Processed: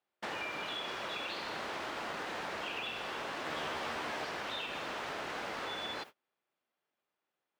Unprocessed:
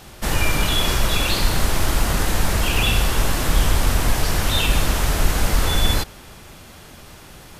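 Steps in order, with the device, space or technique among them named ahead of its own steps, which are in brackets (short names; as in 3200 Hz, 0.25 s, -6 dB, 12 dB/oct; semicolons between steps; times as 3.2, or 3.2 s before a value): baby monitor (BPF 390–3200 Hz; compressor 8:1, threshold -28 dBFS, peak gain reduction 8 dB; white noise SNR 29 dB; gate -39 dBFS, range -34 dB); 3.45–4.25 doubler 13 ms -3 dB; gain -8 dB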